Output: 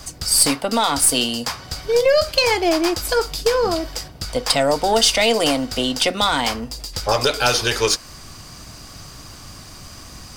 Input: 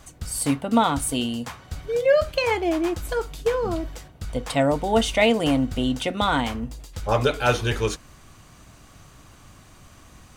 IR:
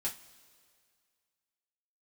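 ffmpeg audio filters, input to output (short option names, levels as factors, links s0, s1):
-filter_complex "[0:a]equalizer=f=4900:w=4.1:g=14,acrossover=split=360|3600[s0][s1][s2];[s0]acompressor=threshold=0.0112:ratio=5[s3];[s1]alimiter=limit=0.126:level=0:latency=1:release=137[s4];[s2]highshelf=f=6600:g=5[s5];[s3][s4][s5]amix=inputs=3:normalize=0,aeval=exprs='0.355*(cos(1*acos(clip(val(0)/0.355,-1,1)))-cos(1*PI/2))+0.0282*(cos(2*acos(clip(val(0)/0.355,-1,1)))-cos(2*PI/2))+0.0224*(cos(4*acos(clip(val(0)/0.355,-1,1)))-cos(4*PI/2))+0.00355*(cos(8*acos(clip(val(0)/0.355,-1,1)))-cos(8*PI/2))':c=same,volume=2.66"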